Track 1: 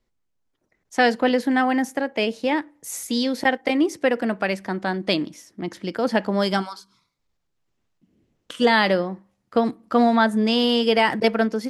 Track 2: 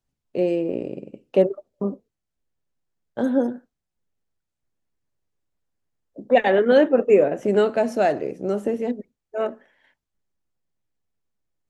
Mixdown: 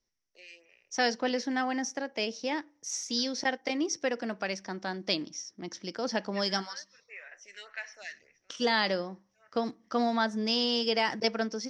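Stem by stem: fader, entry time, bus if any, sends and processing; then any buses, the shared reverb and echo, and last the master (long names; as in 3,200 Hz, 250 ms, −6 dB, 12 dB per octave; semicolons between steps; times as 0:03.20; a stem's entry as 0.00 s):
+3.0 dB, 0.00 s, no send, no processing
+2.0 dB, 0.00 s, no send, high-pass with resonance 1,900 Hz, resonance Q 5.1; phaser with staggered stages 1.7 Hz; automatic ducking −13 dB, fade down 0.35 s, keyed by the first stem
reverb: not used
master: transistor ladder low-pass 5,900 Hz, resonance 85%; low-shelf EQ 220 Hz −3.5 dB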